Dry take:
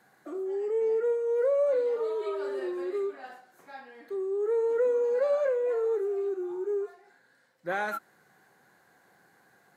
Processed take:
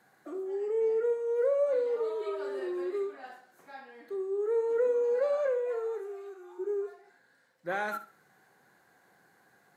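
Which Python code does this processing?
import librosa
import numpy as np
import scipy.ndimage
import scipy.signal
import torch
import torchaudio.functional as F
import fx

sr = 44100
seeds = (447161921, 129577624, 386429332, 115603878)

y = fx.highpass(x, sr, hz=fx.line((5.57, 400.0), (6.58, 920.0)), slope=12, at=(5.57, 6.58), fade=0.02)
y = fx.echo_feedback(y, sr, ms=67, feedback_pct=25, wet_db=-13)
y = F.gain(torch.from_numpy(y), -2.0).numpy()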